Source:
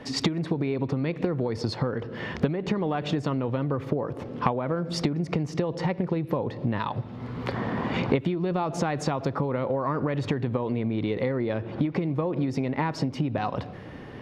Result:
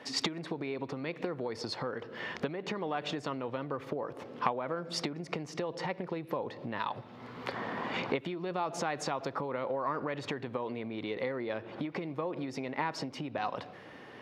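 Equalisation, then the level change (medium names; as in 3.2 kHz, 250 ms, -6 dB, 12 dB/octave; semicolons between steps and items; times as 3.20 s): high-pass 650 Hz 6 dB/octave; -2.5 dB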